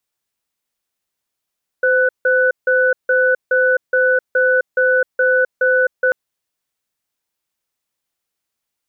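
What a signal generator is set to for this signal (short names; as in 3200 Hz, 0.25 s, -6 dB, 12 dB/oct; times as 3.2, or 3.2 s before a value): cadence 513 Hz, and 1490 Hz, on 0.26 s, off 0.16 s, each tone -14 dBFS 4.29 s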